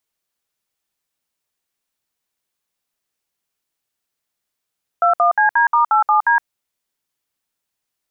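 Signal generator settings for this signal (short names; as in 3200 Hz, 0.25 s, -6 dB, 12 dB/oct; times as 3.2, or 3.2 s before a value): DTMF "21CD*87D", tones 0.116 s, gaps 62 ms, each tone -13.5 dBFS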